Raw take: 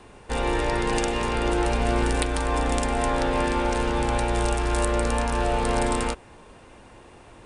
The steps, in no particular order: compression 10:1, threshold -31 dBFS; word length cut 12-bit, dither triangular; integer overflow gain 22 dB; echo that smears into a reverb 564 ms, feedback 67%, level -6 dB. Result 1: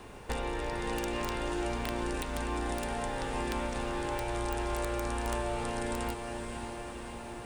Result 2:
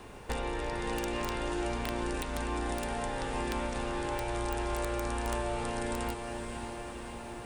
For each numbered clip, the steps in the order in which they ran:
compression > word length cut > echo that smears into a reverb > integer overflow; word length cut > compression > echo that smears into a reverb > integer overflow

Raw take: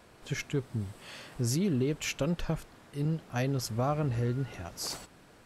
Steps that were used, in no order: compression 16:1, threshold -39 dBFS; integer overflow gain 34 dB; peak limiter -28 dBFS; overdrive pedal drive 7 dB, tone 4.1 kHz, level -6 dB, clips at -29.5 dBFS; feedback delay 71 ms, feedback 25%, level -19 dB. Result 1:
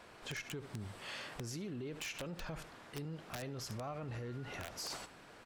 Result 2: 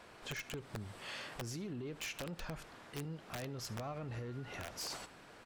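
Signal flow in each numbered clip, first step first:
feedback delay > peak limiter > overdrive pedal > compression > integer overflow; overdrive pedal > peak limiter > compression > feedback delay > integer overflow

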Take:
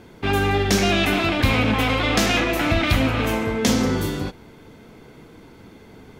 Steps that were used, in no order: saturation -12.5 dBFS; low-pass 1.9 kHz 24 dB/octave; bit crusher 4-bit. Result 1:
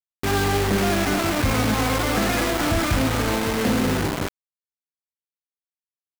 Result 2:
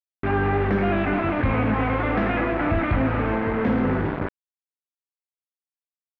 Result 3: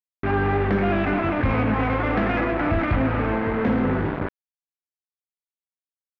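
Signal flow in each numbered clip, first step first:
low-pass > bit crusher > saturation; bit crusher > saturation > low-pass; bit crusher > low-pass > saturation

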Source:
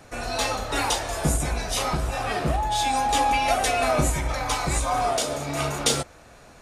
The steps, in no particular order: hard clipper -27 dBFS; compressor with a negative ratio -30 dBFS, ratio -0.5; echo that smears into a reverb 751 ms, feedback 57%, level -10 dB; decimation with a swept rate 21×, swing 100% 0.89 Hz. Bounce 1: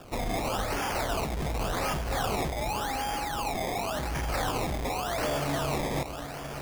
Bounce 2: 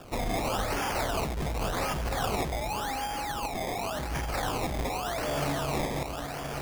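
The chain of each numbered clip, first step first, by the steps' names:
hard clipper > compressor with a negative ratio > echo that smears into a reverb > decimation with a swept rate; hard clipper > echo that smears into a reverb > compressor with a negative ratio > decimation with a swept rate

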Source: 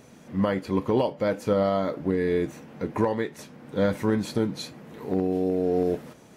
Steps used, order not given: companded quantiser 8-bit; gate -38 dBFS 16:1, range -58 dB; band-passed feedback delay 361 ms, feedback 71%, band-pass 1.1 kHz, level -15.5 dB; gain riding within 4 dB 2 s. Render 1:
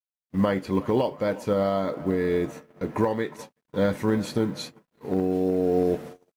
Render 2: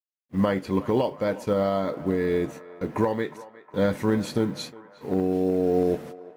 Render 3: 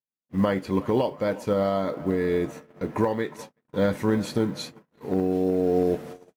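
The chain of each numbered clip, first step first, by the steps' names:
band-passed feedback delay > gate > gain riding > companded quantiser; gain riding > gate > companded quantiser > band-passed feedback delay; band-passed feedback delay > companded quantiser > gain riding > gate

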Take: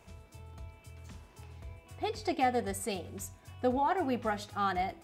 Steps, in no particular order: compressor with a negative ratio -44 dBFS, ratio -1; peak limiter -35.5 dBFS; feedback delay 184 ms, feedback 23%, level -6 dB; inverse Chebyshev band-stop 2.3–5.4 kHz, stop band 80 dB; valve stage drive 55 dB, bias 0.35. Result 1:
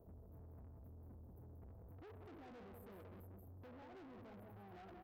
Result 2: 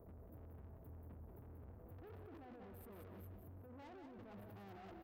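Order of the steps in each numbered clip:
peak limiter > inverse Chebyshev band-stop > compressor with a negative ratio > feedback delay > valve stage; inverse Chebyshev band-stop > compressor with a negative ratio > peak limiter > valve stage > feedback delay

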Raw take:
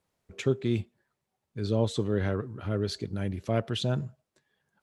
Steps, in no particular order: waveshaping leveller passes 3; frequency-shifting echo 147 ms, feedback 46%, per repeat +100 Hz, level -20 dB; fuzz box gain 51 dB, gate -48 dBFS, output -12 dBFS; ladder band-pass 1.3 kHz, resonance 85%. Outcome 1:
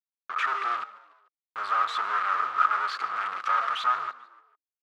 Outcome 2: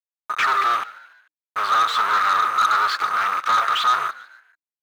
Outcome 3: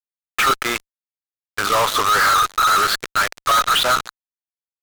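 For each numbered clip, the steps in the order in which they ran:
waveshaping leveller > fuzz box > frequency-shifting echo > ladder band-pass; fuzz box > ladder band-pass > waveshaping leveller > frequency-shifting echo; ladder band-pass > waveshaping leveller > frequency-shifting echo > fuzz box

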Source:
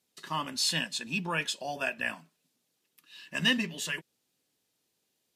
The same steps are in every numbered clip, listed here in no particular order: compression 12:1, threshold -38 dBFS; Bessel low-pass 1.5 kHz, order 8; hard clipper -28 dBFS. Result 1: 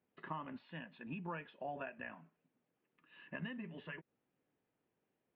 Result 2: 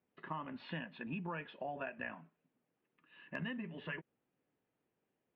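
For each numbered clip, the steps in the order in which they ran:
compression > hard clipper > Bessel low-pass; Bessel low-pass > compression > hard clipper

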